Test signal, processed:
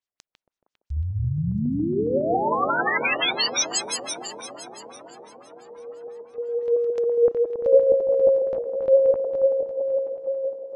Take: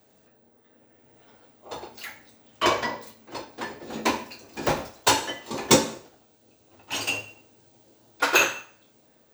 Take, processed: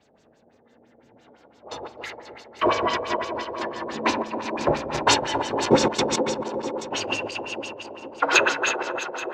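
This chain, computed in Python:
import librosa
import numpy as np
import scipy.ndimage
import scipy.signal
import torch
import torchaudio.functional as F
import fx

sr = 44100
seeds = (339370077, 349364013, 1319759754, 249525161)

y = fx.reverse_delay_fb(x, sr, ms=138, feedback_pct=74, wet_db=-5.5)
y = fx.echo_wet_bandpass(y, sr, ms=463, feedback_pct=67, hz=470.0, wet_db=-7.5)
y = fx.filter_lfo_lowpass(y, sr, shape='sine', hz=5.9, low_hz=540.0, high_hz=6800.0, q=1.8)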